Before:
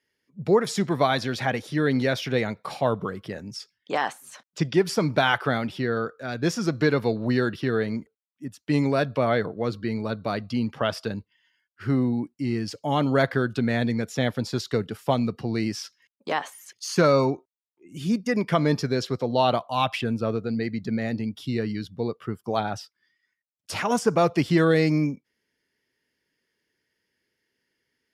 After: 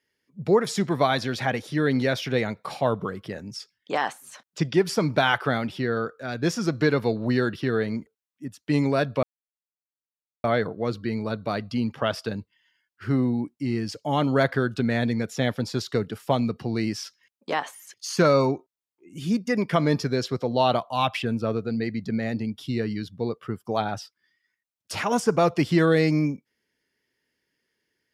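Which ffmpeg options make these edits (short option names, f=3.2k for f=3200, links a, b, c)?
-filter_complex "[0:a]asplit=2[a][b];[a]atrim=end=9.23,asetpts=PTS-STARTPTS,afade=t=out:st=9.226:d=0.004:c=hsin,apad=pad_dur=1.21[c];[b]atrim=start=9.23,asetpts=PTS-STARTPTS,afade=t=in:d=0.004:c=hsin[d];[c][d]concat=n=2:v=0:a=1"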